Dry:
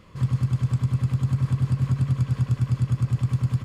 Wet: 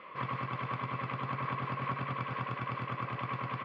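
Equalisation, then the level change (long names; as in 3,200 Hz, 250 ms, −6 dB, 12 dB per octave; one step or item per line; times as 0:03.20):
loudspeaker in its box 470–3,000 Hz, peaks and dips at 610 Hz +3 dB, 1,100 Hz +8 dB, 2,200 Hz +6 dB
+4.0 dB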